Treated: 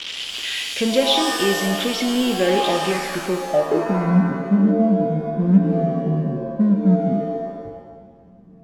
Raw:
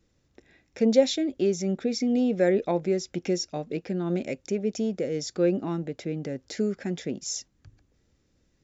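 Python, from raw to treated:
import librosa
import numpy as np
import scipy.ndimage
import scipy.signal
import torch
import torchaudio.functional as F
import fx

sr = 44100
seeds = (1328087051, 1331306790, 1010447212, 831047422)

p1 = x + 0.5 * 10.0 ** (-20.0 / 20.0) * np.diff(np.sign(x), prepend=np.sign(x[:1]))
p2 = fx.filter_sweep_lowpass(p1, sr, from_hz=3100.0, to_hz=190.0, start_s=2.85, end_s=4.08, q=7.2)
p3 = np.clip(p2, -10.0 ** (-25.0 / 20.0), 10.0 ** (-25.0 / 20.0))
p4 = p2 + (p3 * librosa.db_to_amplitude(-6.0))
y = fx.rev_shimmer(p4, sr, seeds[0], rt60_s=1.3, semitones=7, shimmer_db=-2, drr_db=5.5)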